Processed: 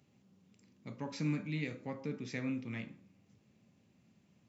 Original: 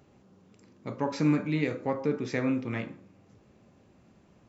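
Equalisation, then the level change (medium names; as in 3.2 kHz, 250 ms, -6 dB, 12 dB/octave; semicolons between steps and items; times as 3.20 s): high-pass 110 Hz; high-order bell 700 Hz -8.5 dB 2.7 oct; -5.5 dB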